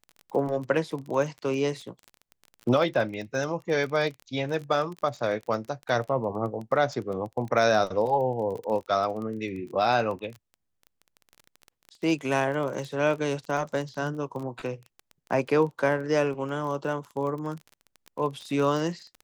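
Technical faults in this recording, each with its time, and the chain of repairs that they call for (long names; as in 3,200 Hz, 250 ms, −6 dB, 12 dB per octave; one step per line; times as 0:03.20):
surface crackle 24 per second −33 dBFS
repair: click removal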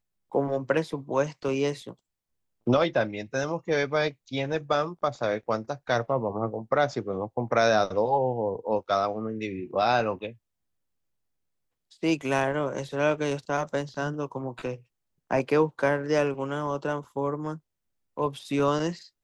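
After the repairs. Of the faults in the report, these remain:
none of them is left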